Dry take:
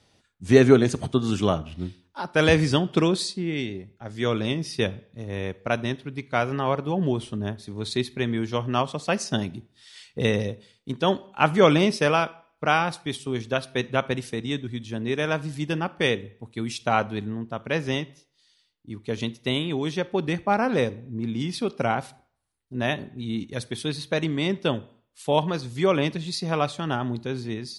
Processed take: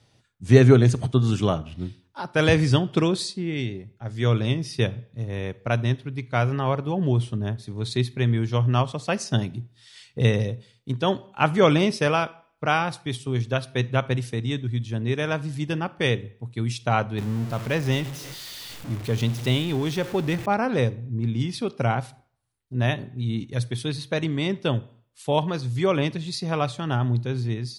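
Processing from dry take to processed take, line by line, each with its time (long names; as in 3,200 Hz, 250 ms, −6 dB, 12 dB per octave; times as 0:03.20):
0:17.18–0:20.46: converter with a step at zero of −32 dBFS
whole clip: parametric band 120 Hz +12.5 dB 0.34 octaves; level −1 dB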